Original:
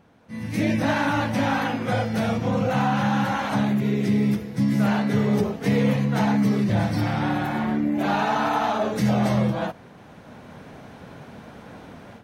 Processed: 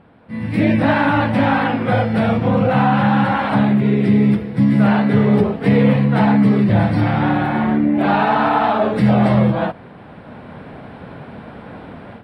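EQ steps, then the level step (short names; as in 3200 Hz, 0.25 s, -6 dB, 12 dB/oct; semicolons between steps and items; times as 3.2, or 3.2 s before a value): running mean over 7 samples; +7.5 dB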